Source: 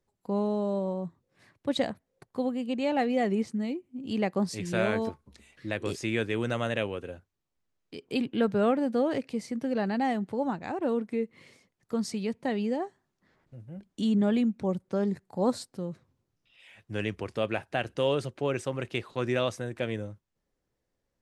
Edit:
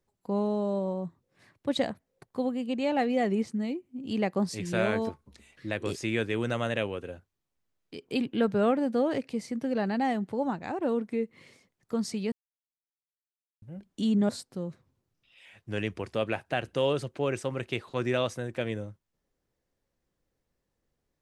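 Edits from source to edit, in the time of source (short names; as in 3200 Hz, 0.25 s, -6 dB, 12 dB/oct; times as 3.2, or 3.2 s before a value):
12.32–13.62 mute
14.29–15.51 cut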